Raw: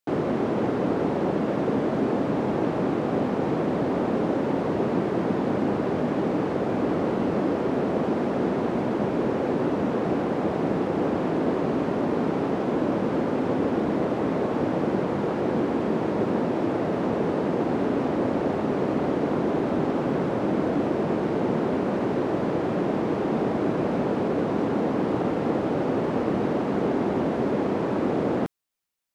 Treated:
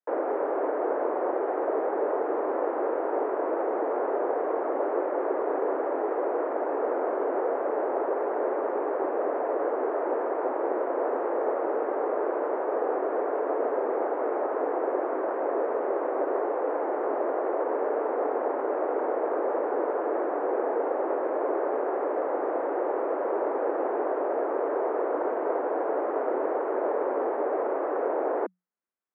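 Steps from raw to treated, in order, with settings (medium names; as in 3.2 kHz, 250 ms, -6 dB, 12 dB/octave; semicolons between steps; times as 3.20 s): low-pass 1.6 kHz 24 dB/octave; frequency shift +180 Hz; trim -3 dB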